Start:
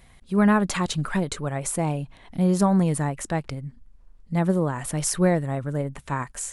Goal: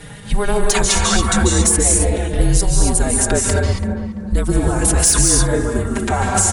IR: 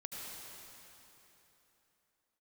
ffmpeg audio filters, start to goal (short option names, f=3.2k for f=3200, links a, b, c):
-filter_complex "[0:a]equalizer=f=590:w=2:g=3.5,asplit=2[a][b];[b]adelay=336,lowpass=f=1.9k:p=1,volume=-16.5dB,asplit=2[c][d];[d]adelay=336,lowpass=f=1.9k:p=1,volume=0.32,asplit=2[e][f];[f]adelay=336,lowpass=f=1.9k:p=1,volume=0.32[g];[a][c][e][g]amix=inputs=4:normalize=0,acrossover=split=5200[h][i];[h]acompressor=threshold=-32dB:ratio=8[j];[j][i]amix=inputs=2:normalize=0[k];[1:a]atrim=start_sample=2205,atrim=end_sample=6615,asetrate=22932,aresample=44100[l];[k][l]afir=irnorm=-1:irlink=0,volume=22dB,asoftclip=hard,volume=-22dB,afreqshift=-220,alimiter=level_in=24dB:limit=-1dB:release=50:level=0:latency=1,asplit=2[m][n];[n]adelay=4.4,afreqshift=-0.36[o];[m][o]amix=inputs=2:normalize=1"